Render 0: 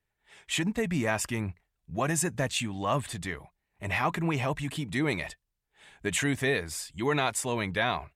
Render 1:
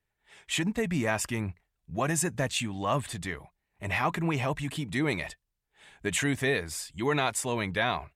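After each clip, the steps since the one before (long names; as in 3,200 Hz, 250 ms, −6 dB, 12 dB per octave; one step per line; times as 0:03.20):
no processing that can be heard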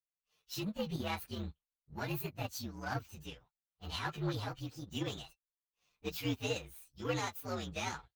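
partials spread apart or drawn together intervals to 121%
power curve on the samples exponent 1.4
level −3 dB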